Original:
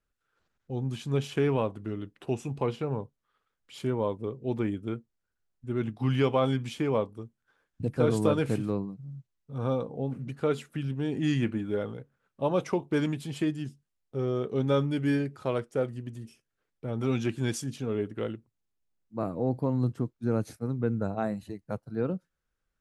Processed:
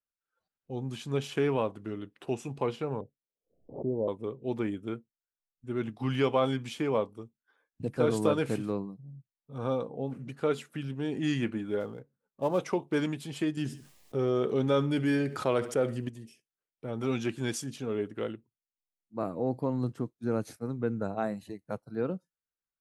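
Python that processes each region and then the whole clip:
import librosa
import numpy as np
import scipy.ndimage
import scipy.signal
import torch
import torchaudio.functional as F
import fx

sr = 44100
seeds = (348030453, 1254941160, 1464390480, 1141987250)

y = fx.chain(x, sr, fx.steep_lowpass(hz=710.0, slope=48),
    fx.pre_swell(db_per_s=120.0), at=(3.01, 4.08))
y = fx.chain(y, sr, fx.dead_time(dead_ms=0.06),
    fx.high_shelf(hz=2400.0, db=-10.0), at=(11.8, 12.59))
y = fx.chain(y, sr, fx.echo_feedback(ms=69, feedback_pct=30, wet_db=-22.5),
    fx.env_flatten(amount_pct=50), at=(13.57, 16.09))
y = fx.noise_reduce_blind(y, sr, reduce_db=15)
y = fx.low_shelf(y, sr, hz=130.0, db=-11.0)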